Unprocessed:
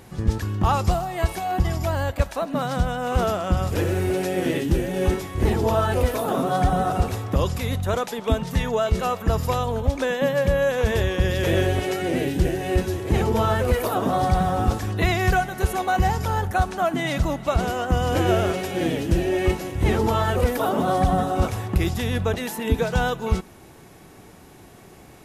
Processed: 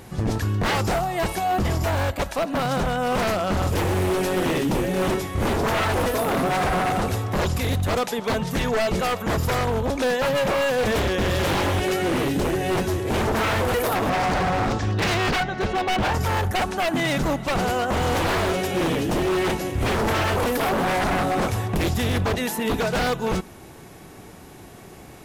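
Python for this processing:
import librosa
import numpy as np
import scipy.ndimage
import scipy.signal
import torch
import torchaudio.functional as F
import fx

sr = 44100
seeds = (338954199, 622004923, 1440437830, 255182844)

y = fx.lowpass(x, sr, hz=fx.line((14.09, 7800.0), (16.13, 4300.0)), slope=24, at=(14.09, 16.13), fade=0.02)
y = 10.0 ** (-20.5 / 20.0) * (np.abs((y / 10.0 ** (-20.5 / 20.0) + 3.0) % 4.0 - 2.0) - 1.0)
y = F.gain(torch.from_numpy(y), 3.5).numpy()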